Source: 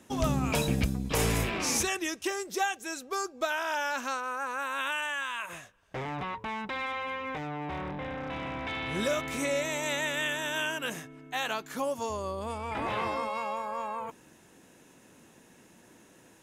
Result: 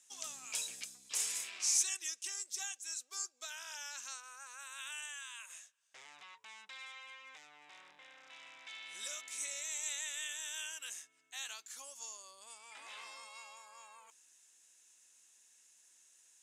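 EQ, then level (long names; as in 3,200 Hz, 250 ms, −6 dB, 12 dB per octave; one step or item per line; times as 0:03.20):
resonant band-pass 7,700 Hz, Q 2
spectral tilt +2 dB per octave
high-shelf EQ 7,600 Hz −12 dB
+2.5 dB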